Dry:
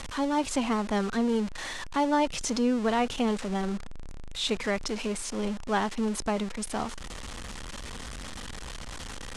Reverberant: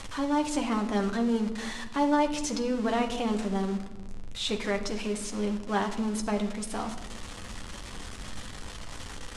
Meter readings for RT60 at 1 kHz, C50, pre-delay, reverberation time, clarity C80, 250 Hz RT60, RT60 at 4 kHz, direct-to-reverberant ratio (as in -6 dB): 1.0 s, 10.5 dB, 10 ms, 1.1 s, 12.5 dB, 2.1 s, 0.75 s, 4.0 dB